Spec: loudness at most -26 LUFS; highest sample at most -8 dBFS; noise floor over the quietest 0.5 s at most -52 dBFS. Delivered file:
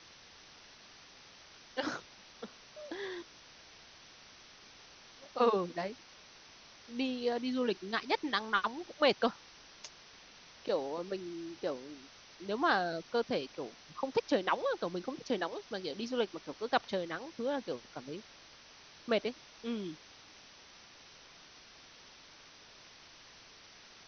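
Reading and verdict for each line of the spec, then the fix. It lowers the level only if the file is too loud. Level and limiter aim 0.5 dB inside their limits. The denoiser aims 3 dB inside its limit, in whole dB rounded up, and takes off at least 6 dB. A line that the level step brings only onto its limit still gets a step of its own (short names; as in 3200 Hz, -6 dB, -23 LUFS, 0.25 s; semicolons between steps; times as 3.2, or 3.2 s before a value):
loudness -35.5 LUFS: OK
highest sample -14.5 dBFS: OK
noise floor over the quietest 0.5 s -57 dBFS: OK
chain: none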